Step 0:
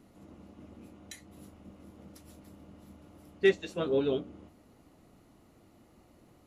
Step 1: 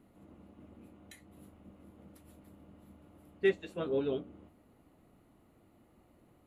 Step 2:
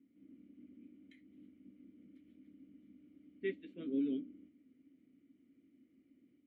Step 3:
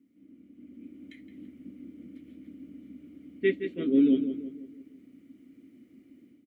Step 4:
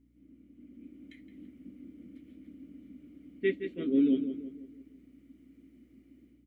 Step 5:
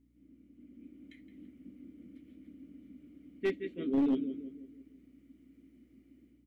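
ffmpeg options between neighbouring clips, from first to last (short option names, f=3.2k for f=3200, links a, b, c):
-af "equalizer=f=5.6k:t=o:w=0.81:g=-12,volume=-4dB"
-filter_complex "[0:a]asplit=3[a][b][c];[a]bandpass=f=270:t=q:w=8,volume=0dB[d];[b]bandpass=f=2.29k:t=q:w=8,volume=-6dB[e];[c]bandpass=f=3.01k:t=q:w=8,volume=-9dB[f];[d][e][f]amix=inputs=3:normalize=0,dynaudnorm=f=120:g=3:m=4dB,highshelf=f=3.1k:g=-10.5,volume=2dB"
-filter_complex "[0:a]dynaudnorm=f=520:g=3:m=9dB,asplit=2[a][b];[b]adelay=168,lowpass=f=2.2k:p=1,volume=-9.5dB,asplit=2[c][d];[d]adelay=168,lowpass=f=2.2k:p=1,volume=0.47,asplit=2[e][f];[f]adelay=168,lowpass=f=2.2k:p=1,volume=0.47,asplit=2[g][h];[h]adelay=168,lowpass=f=2.2k:p=1,volume=0.47,asplit=2[i][j];[j]adelay=168,lowpass=f=2.2k:p=1,volume=0.47[k];[c][e][g][i][k]amix=inputs=5:normalize=0[l];[a][l]amix=inputs=2:normalize=0,volume=4dB"
-af "aeval=exprs='val(0)+0.000631*(sin(2*PI*60*n/s)+sin(2*PI*2*60*n/s)/2+sin(2*PI*3*60*n/s)/3+sin(2*PI*4*60*n/s)/4+sin(2*PI*5*60*n/s)/5)':c=same,volume=-3.5dB"
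-af "aeval=exprs='clip(val(0),-1,0.0708)':c=same,volume=-2.5dB"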